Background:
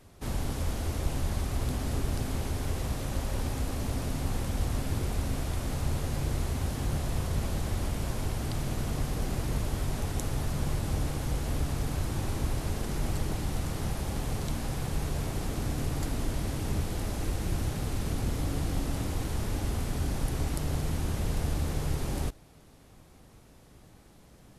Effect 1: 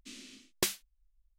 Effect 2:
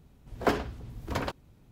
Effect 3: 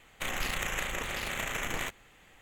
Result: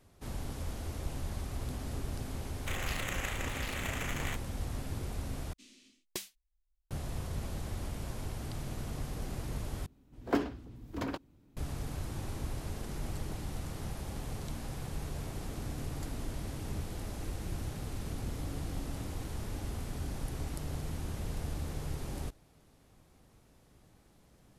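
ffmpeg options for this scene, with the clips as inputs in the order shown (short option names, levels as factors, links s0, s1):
-filter_complex "[0:a]volume=0.422[s0];[1:a]equalizer=f=1400:w=2.2:g=-5[s1];[2:a]equalizer=f=290:t=o:w=0.58:g=10.5[s2];[s0]asplit=3[s3][s4][s5];[s3]atrim=end=5.534[s6];[s1]atrim=end=1.38,asetpts=PTS-STARTPTS,volume=0.335[s7];[s4]atrim=start=6.906:end=9.864[s8];[s2]atrim=end=1.71,asetpts=PTS-STARTPTS,volume=0.422[s9];[s5]atrim=start=11.566[s10];[3:a]atrim=end=2.41,asetpts=PTS-STARTPTS,volume=0.596,afade=t=in:d=0.004:c=hsin,afade=t=out:st=2.406:d=0.004:c=hsin,adelay=2460[s11];[s6][s7]acrossfade=d=0.004:c1=hsin:c2=hsin[s12];[s12][s8]acrossfade=d=0.004:c1=hsin:c2=hsin[s13];[s13][s9]acrossfade=d=0.004:c1=hsin:c2=hsin[s14];[s14][s10]acrossfade=d=0.004:c1=hsin:c2=hsin[s15];[s15][s11]amix=inputs=2:normalize=0"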